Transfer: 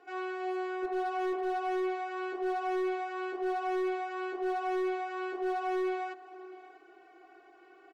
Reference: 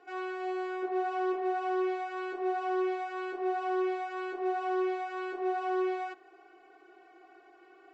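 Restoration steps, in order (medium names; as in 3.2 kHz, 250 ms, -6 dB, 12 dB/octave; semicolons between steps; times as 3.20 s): clip repair -28 dBFS; inverse comb 644 ms -18 dB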